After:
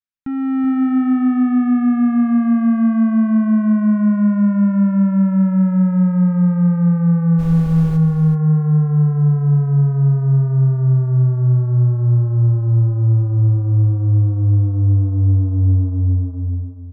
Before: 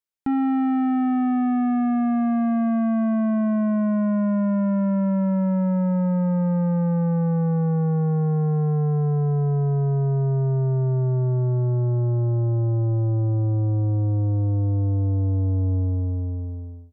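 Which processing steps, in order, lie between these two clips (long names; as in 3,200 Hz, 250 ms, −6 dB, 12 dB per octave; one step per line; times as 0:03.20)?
low-pass filter 2,100 Hz 6 dB per octave
flat-topped bell 560 Hz −11.5 dB
0:07.38–0:07.96: background noise brown −34 dBFS
automatic gain control gain up to 6.5 dB
single-tap delay 380 ms −8 dB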